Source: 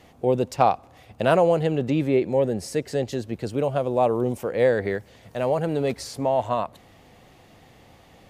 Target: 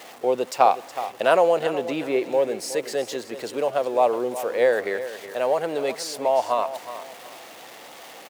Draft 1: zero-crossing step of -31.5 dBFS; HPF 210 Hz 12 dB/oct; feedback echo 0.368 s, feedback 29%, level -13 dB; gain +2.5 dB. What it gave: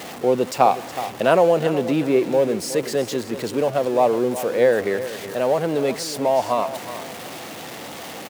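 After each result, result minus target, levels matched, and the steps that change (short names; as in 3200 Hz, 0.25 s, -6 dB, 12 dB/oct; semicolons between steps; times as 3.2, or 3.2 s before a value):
250 Hz band +5.5 dB; zero-crossing step: distortion +8 dB
change: HPF 470 Hz 12 dB/oct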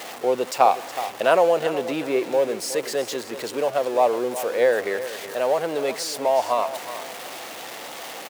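zero-crossing step: distortion +8 dB
change: zero-crossing step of -40 dBFS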